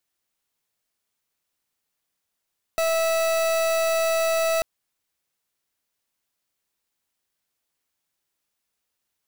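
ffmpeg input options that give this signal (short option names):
-f lavfi -i "aevalsrc='0.0794*(2*lt(mod(654*t,1),0.39)-1)':d=1.84:s=44100"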